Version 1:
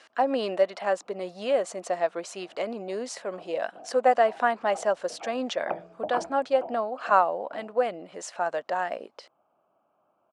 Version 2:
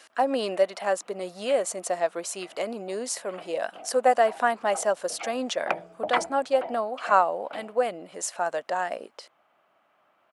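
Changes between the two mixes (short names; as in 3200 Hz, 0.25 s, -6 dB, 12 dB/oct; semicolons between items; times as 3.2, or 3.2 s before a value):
background: remove running mean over 23 samples; master: remove air absorption 94 m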